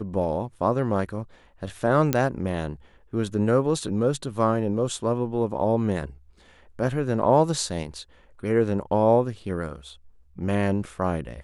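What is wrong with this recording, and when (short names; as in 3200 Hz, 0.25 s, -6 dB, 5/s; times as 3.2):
2.13 pop -7 dBFS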